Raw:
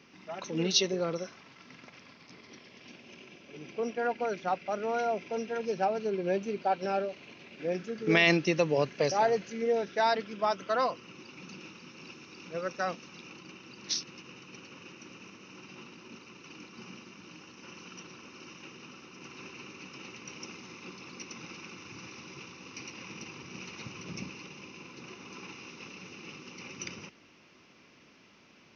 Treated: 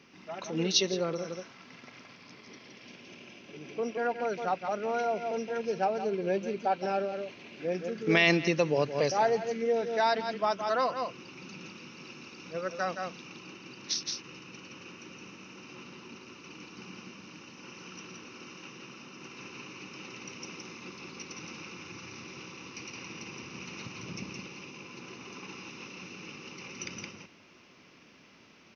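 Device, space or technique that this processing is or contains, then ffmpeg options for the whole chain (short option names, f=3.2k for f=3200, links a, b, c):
ducked delay: -filter_complex "[0:a]asplit=3[a][b][c];[b]adelay=168,volume=-3dB[d];[c]apad=whole_len=1275618[e];[d][e]sidechaincompress=threshold=-42dB:ratio=8:attack=16:release=118[f];[a][f]amix=inputs=2:normalize=0"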